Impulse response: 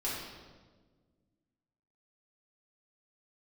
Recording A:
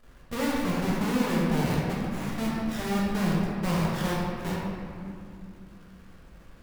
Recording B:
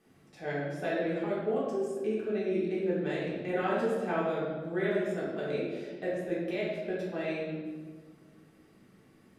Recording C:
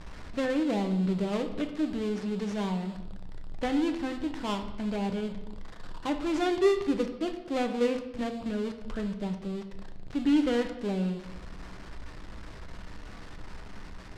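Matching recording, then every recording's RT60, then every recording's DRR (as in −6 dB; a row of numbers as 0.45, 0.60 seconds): B; 2.5, 1.5, 0.90 seconds; −6.0, −8.5, 5.5 decibels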